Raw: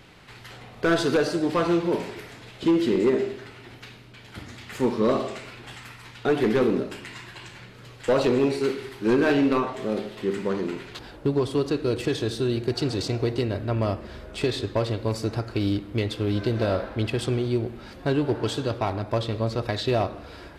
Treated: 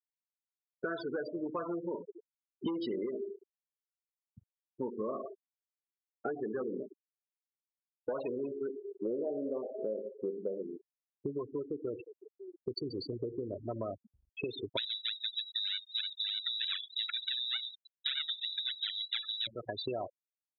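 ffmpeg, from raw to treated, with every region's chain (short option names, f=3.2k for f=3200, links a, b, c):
-filter_complex "[0:a]asettb=1/sr,asplit=3[a][b][c];[a]atrim=end=2.644[d];[b]atrim=start=2.64:end=3.06,asetpts=PTS-STARTPTS,afade=t=in:d=0.004:c=qsin,afade=t=out:st=0.416:d=0.004:c=qsin,lowpass=f=5.8k:t=q:w=2,acontrast=49[e];[c]atrim=start=3.056[f];[d][e]acrossfade=d=0.004:c1=hsin:c2=qsin[g];[g][f]acrossfade=d=0.004:c1=qsin:c2=hsin,asettb=1/sr,asplit=3[h][i][j];[h]atrim=end=8.874[k];[i]atrim=start=8.87:end=10.62,asetpts=PTS-STARTPTS,afade=t=in:d=0.004:c=qsin,afade=t=out:st=1.746:d=0.004:c=qsin,lowpass=f=550:t=q:w=3.4,acrusher=bits=8:dc=4:mix=0:aa=0.000001[l];[j]atrim=start=10.616[m];[k][l]acrossfade=d=0.004:c1=hsin:c2=qsin[n];[n][m]acrossfade=d=0.004:c1=qsin:c2=hsin,asettb=1/sr,asplit=3[o][p][q];[o]atrim=end=12.064[r];[p]atrim=start=12.06:end=12.67,asetpts=PTS-STARTPTS,afade=t=in:d=0.004:c=qsin,afade=t=out:st=0.606:d=0.004:c=qsin,equalizer=f=210:w=0.94:g=-13.5,acompressor=threshold=-34dB:ratio=12:attack=3.2:release=140:knee=1:detection=peak[s];[q]atrim=start=12.666[t];[r][s]acrossfade=d=0.004:c1=hsin:c2=qsin[u];[u][t]acrossfade=d=0.004:c1=qsin:c2=hsin,asettb=1/sr,asplit=3[v][w][x];[v]atrim=end=14.774[y];[w]atrim=start=14.77:end=19.47,asetpts=PTS-STARTPTS,afade=t=in:d=0.004:c=qsin,afade=t=out:st=4.696:d=0.004:c=qsin,acrusher=samples=35:mix=1:aa=0.000001:lfo=1:lforange=56:lforate=3.3,lowpass=f=3.4k:t=q:w=0.5098,lowpass=f=3.4k:t=q:w=0.6013,lowpass=f=3.4k:t=q:w=0.9,lowpass=f=3.4k:t=q:w=2.563,afreqshift=-4000,equalizer=f=1.6k:w=1.1:g=8.5[z];[x]atrim=start=19.466[aa];[y][z]acrossfade=d=0.004:c1=hsin:c2=qsin[ab];[ab][aa]acrossfade=d=0.004:c1=qsin:c2=hsin,afftfilt=real='re*gte(hypot(re,im),0.112)':imag='im*gte(hypot(re,im),0.112)':win_size=1024:overlap=0.75,highpass=f=530:p=1,acompressor=threshold=-34dB:ratio=6"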